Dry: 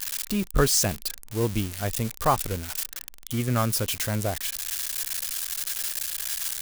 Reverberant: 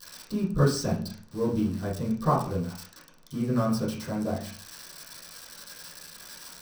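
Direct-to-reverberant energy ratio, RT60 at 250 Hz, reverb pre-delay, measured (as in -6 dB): -11.0 dB, 0.70 s, 3 ms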